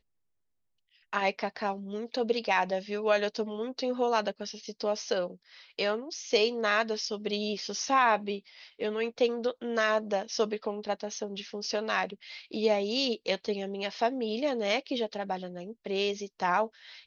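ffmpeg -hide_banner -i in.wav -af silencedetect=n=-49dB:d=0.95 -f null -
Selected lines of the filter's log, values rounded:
silence_start: 0.00
silence_end: 1.13 | silence_duration: 1.13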